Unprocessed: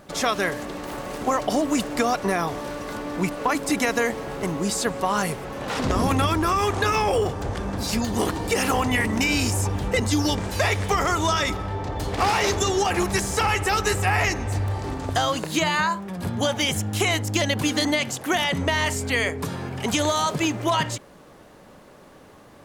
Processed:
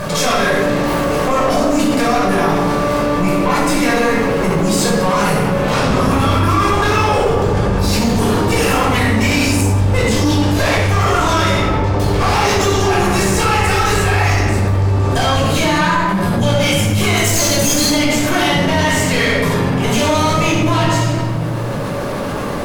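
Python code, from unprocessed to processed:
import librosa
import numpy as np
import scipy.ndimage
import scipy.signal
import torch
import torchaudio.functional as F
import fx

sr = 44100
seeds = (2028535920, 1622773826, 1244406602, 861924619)

y = fx.high_shelf_res(x, sr, hz=4300.0, db=12.5, q=1.5, at=(17.17, 17.9))
y = fx.tube_stage(y, sr, drive_db=21.0, bias=0.55)
y = fx.room_shoebox(y, sr, seeds[0], volume_m3=800.0, walls='mixed', distance_m=5.4)
y = fx.env_flatten(y, sr, amount_pct=70)
y = y * 10.0 ** (-2.5 / 20.0)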